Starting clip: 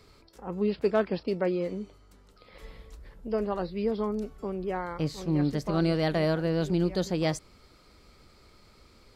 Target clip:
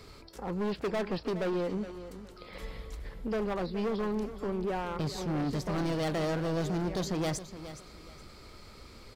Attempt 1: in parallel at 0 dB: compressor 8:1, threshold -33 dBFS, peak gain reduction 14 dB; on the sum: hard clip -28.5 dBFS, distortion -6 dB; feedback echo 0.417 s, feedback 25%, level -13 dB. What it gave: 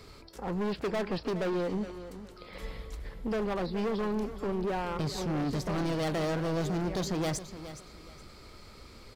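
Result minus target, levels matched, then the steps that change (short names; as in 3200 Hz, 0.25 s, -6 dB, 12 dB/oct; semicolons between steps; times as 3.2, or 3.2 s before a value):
compressor: peak gain reduction -9 dB
change: compressor 8:1, threshold -43 dBFS, peak gain reduction 23 dB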